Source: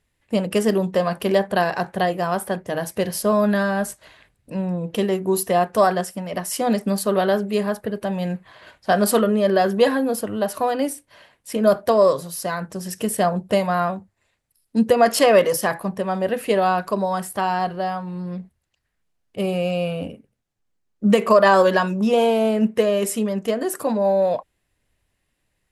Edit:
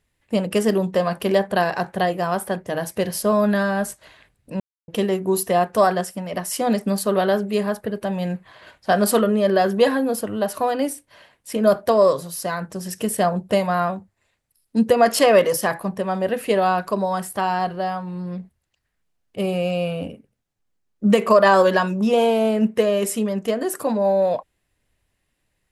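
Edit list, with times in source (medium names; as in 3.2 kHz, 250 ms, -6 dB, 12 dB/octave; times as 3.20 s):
4.60–4.88 s: mute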